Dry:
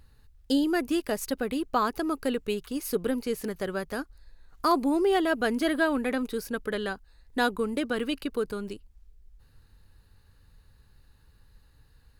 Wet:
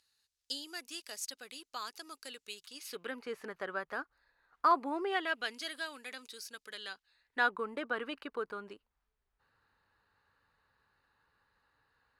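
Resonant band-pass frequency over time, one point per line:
resonant band-pass, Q 1.2
0:02.64 5,800 Hz
0:03.26 1,300 Hz
0:05.02 1,300 Hz
0:05.67 5,400 Hz
0:06.76 5,400 Hz
0:07.57 1,200 Hz

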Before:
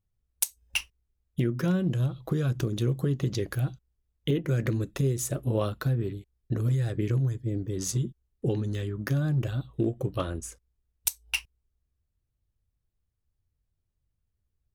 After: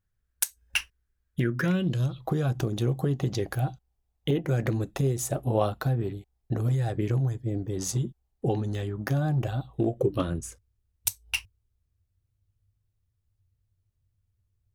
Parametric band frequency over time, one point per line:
parametric band +13.5 dB 0.52 octaves
0:01.60 1,600 Hz
0:02.09 6,500 Hz
0:02.28 770 Hz
0:09.86 770 Hz
0:10.47 100 Hz

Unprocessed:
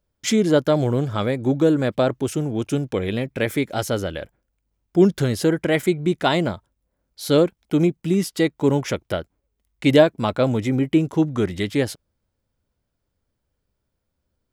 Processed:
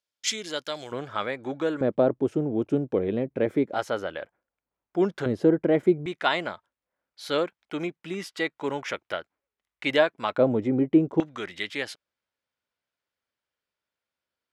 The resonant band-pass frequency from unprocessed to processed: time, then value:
resonant band-pass, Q 0.81
4,200 Hz
from 0:00.92 1,600 Hz
from 0:01.81 400 Hz
from 0:03.74 1,100 Hz
from 0:05.26 390 Hz
from 0:06.06 1,700 Hz
from 0:10.38 440 Hz
from 0:11.20 2,300 Hz

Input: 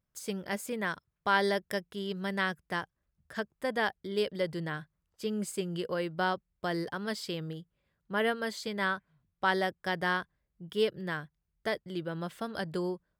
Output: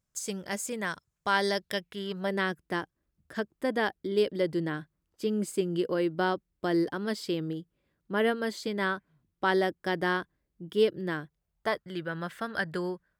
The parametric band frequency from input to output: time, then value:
parametric band +10.5 dB 0.83 octaves
0:01.44 7,100 Hz
0:02.05 1,600 Hz
0:02.40 310 Hz
0:11.18 310 Hz
0:11.91 1,700 Hz

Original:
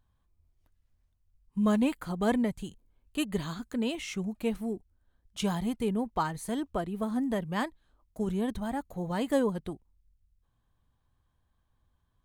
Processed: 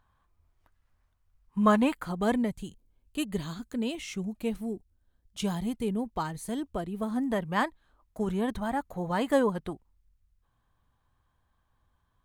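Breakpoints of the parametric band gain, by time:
parametric band 1,200 Hz 2.1 octaves
0:01.65 +12.5 dB
0:02.09 +3 dB
0:02.66 −3.5 dB
0:06.83 −3.5 dB
0:07.46 +6.5 dB

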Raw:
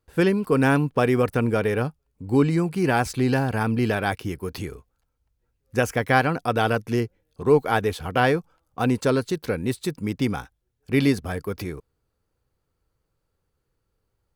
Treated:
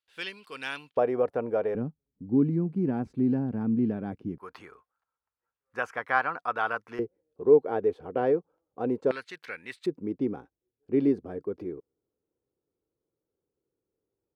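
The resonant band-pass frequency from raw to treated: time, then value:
resonant band-pass, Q 2.1
3,300 Hz
from 0:00.97 600 Hz
from 0:01.75 230 Hz
from 0:04.38 1,200 Hz
from 0:06.99 420 Hz
from 0:09.11 2,000 Hz
from 0:09.86 360 Hz

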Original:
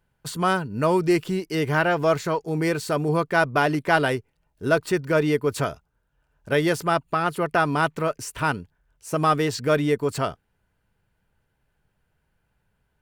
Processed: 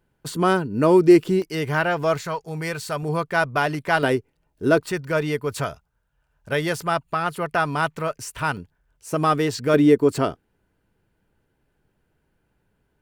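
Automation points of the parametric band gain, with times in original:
parametric band 320 Hz 1.2 octaves
+8.5 dB
from 0:01.42 −3 dB
from 0:02.21 −11 dB
from 0:03.03 −5 dB
from 0:04.03 +7 dB
from 0:04.83 −5 dB
from 0:08.57 +2 dB
from 0:09.74 +10 dB

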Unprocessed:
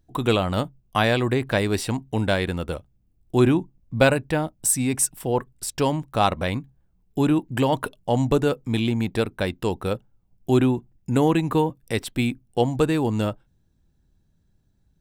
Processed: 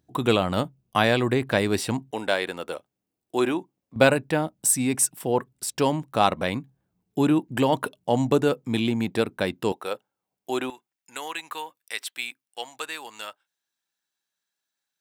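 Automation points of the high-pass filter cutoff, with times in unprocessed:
120 Hz
from 0:02.11 410 Hz
from 0:03.96 150 Hz
from 0:09.72 550 Hz
from 0:10.70 1,400 Hz

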